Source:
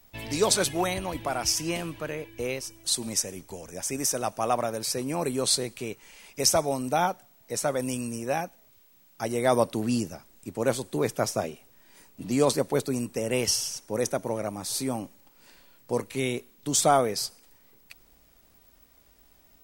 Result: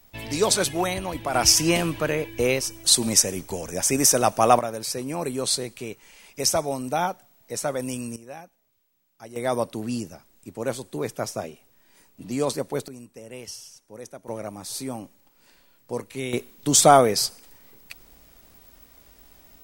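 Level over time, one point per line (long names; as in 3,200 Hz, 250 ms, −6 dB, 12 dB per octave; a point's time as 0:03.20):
+2 dB
from 0:01.34 +9 dB
from 0:04.59 0 dB
from 0:08.16 −12 dB
from 0:09.36 −2.5 dB
from 0:12.88 −13 dB
from 0:14.28 −2.5 dB
from 0:16.33 +7 dB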